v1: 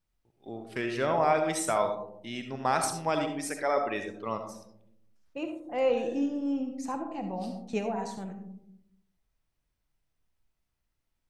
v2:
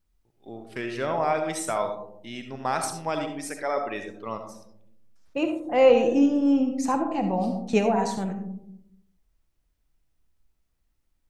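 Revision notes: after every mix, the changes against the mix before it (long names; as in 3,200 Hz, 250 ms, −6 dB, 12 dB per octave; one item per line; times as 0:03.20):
second voice +9.5 dB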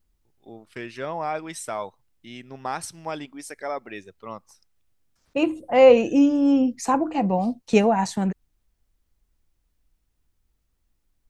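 second voice +6.5 dB
reverb: off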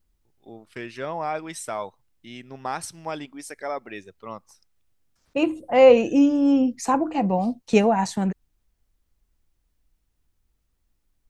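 nothing changed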